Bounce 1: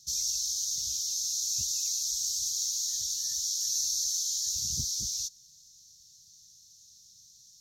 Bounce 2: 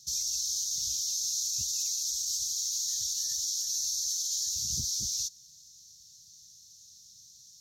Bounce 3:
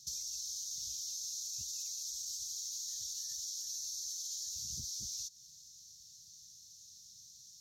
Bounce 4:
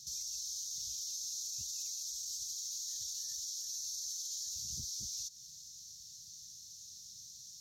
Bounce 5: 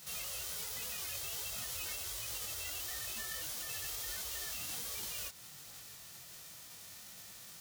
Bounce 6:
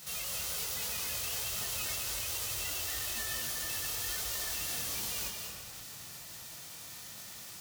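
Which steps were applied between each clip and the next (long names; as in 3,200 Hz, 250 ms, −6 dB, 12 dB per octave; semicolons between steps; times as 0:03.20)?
high-pass filter 42 Hz; brickwall limiter −24.5 dBFS, peak gain reduction 7 dB; level +2 dB
downward compressor 6 to 1, threshold −37 dBFS, peak gain reduction 8.5 dB; level −2 dB
brickwall limiter −37 dBFS, peak gain reduction 8.5 dB; level +4.5 dB
spectral envelope flattened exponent 0.1; multi-voice chorus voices 2, 1.3 Hz, delay 21 ms, depth 3 ms; level +3.5 dB
convolution reverb RT60 1.4 s, pre-delay 181 ms, DRR 2 dB; level +3.5 dB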